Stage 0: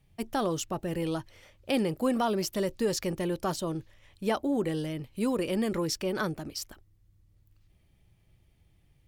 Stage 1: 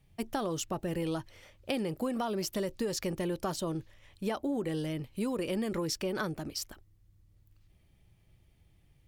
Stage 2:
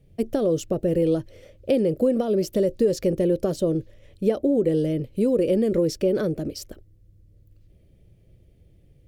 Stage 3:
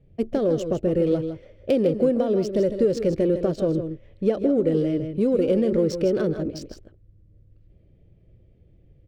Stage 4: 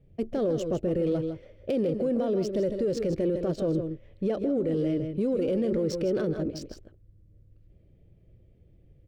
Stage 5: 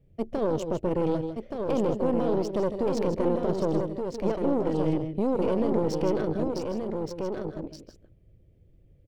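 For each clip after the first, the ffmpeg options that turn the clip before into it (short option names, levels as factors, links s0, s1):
-af "acompressor=threshold=0.0355:ratio=6"
-af "lowshelf=f=690:t=q:w=3:g=9"
-af "adynamicsmooth=sensitivity=6:basefreq=2900,aecho=1:1:138|157:0.133|0.335"
-af "alimiter=limit=0.133:level=0:latency=1:release=15,volume=0.75"
-af "aeval=exprs='0.1*(cos(1*acos(clip(val(0)/0.1,-1,1)))-cos(1*PI/2))+0.0251*(cos(2*acos(clip(val(0)/0.1,-1,1)))-cos(2*PI/2))+0.00794*(cos(3*acos(clip(val(0)/0.1,-1,1)))-cos(3*PI/2))':c=same,aecho=1:1:1174:0.562"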